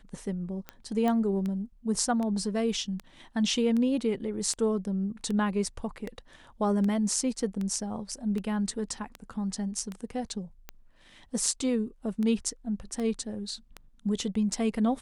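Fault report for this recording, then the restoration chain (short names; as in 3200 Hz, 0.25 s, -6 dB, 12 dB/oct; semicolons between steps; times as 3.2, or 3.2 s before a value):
tick 78 rpm -22 dBFS
1.08 pop -17 dBFS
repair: de-click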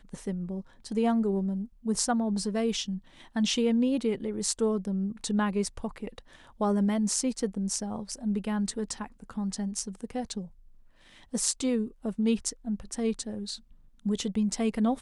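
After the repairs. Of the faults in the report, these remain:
none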